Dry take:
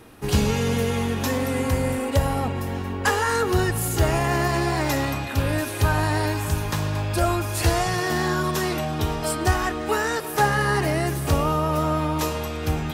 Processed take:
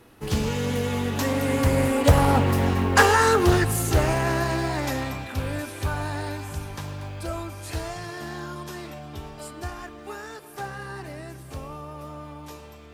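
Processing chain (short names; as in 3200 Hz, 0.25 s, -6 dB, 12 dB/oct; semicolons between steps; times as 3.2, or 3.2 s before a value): Doppler pass-by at 2.63, 14 m/s, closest 9.7 m; short-mantissa float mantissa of 4-bit; Doppler distortion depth 0.42 ms; gain +6.5 dB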